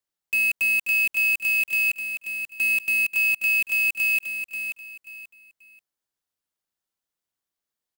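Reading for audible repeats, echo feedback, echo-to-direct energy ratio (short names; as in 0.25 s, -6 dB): 3, 26%, -7.0 dB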